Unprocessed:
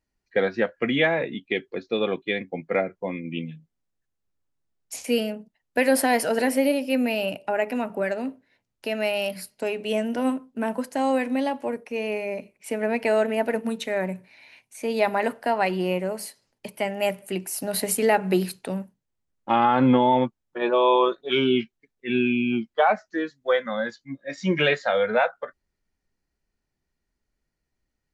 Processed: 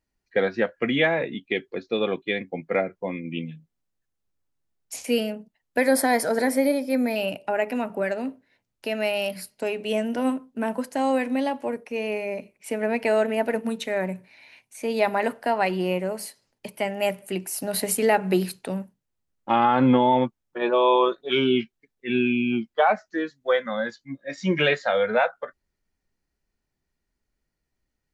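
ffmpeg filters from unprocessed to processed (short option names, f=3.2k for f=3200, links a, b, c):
-filter_complex "[0:a]asettb=1/sr,asplit=3[a][b][c];[a]atrim=end=5.784[d];[b]atrim=start=5.78:end=7.16,asetpts=PTS-STARTPTS,afade=t=in:d=0.004:c=qsin,afade=t=out:st=1.376:d=0.004:c=qsin,asuperstop=centerf=2800:order=4:qfactor=3.6[e];[c]atrim=start=7.156[f];[d][e]acrossfade=d=0.004:c1=hsin:c2=qsin[g];[g][f]acrossfade=d=0.004:c1=qsin:c2=hsin"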